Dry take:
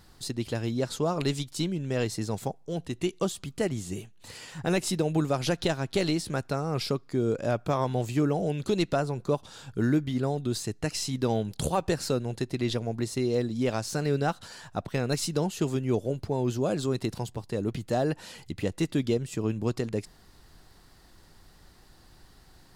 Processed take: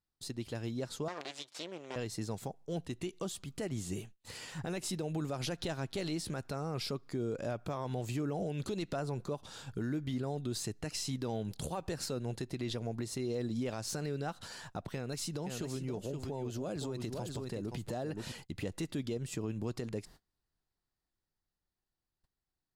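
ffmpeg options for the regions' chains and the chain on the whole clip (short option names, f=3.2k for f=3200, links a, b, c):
-filter_complex "[0:a]asettb=1/sr,asplit=3[a][b][c];[a]atrim=end=1.084[d];[b]atrim=start=1.08:end=1.96,asetpts=PTS-STARTPTS,afade=t=in:d=0.004:c=qsin,afade=t=out:st=0.876:d=0.004:c=qsin,acontrast=39,aeval=exprs='max(val(0),0)':c=same,highpass=470,lowpass=6.8k[e];[c]atrim=start=1.956[f];[d][e]acrossfade=d=0.004:c1=hsin:c2=qsin[g];[g][f]acrossfade=d=0.004:c1=qsin:c2=hsin,asettb=1/sr,asplit=3[h][i][j];[h]atrim=end=14.924[k];[i]atrim=start=14.92:end=18.32,asetpts=PTS-STARTPTS,afade=t=in:d=0.004:c=qsin,afade=t=out:st=3.396:d=0.004:c=qsin,aecho=1:1:520:0.376,atrim=end_sample=149940,acompressor=threshold=-33dB:ratio=5:attack=3.2:release=140:knee=1:detection=peak[l];[j]atrim=start=18.316[m];[k][l]acrossfade=d=0.004:c1=hsin:c2=qsin[n];[n][m]acrossfade=d=0.004:c1=qsin:c2=hsin,agate=range=-28dB:threshold=-47dB:ratio=16:detection=peak,dynaudnorm=f=440:g=13:m=6dB,alimiter=limit=-20dB:level=0:latency=1:release=120,volume=-8dB"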